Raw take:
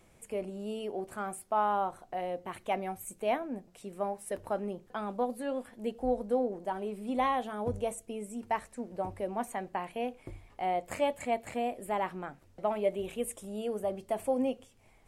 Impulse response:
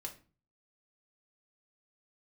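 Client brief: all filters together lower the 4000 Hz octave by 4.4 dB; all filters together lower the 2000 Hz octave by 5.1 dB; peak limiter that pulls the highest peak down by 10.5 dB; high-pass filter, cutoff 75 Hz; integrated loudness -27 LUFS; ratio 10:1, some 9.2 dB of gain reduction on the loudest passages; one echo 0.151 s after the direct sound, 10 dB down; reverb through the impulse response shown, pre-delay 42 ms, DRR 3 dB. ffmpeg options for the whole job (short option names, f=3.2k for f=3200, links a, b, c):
-filter_complex "[0:a]highpass=75,equalizer=f=2k:t=o:g=-5.5,equalizer=f=4k:t=o:g=-3.5,acompressor=threshold=-34dB:ratio=10,alimiter=level_in=9.5dB:limit=-24dB:level=0:latency=1,volume=-9.5dB,aecho=1:1:151:0.316,asplit=2[a][b];[1:a]atrim=start_sample=2205,adelay=42[c];[b][c]afir=irnorm=-1:irlink=0,volume=-0.5dB[d];[a][d]amix=inputs=2:normalize=0,volume=14.5dB"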